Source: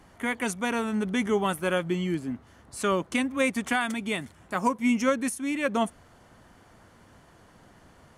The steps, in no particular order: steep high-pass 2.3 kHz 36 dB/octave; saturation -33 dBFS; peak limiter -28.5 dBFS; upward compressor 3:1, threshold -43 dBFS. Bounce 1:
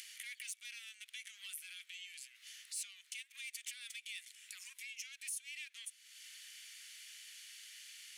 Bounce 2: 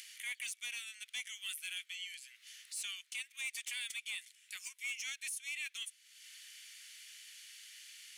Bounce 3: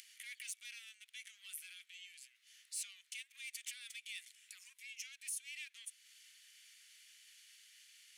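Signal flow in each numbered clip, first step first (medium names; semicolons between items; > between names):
peak limiter > saturation > steep high-pass > upward compressor; steep high-pass > upward compressor > peak limiter > saturation; peak limiter > saturation > upward compressor > steep high-pass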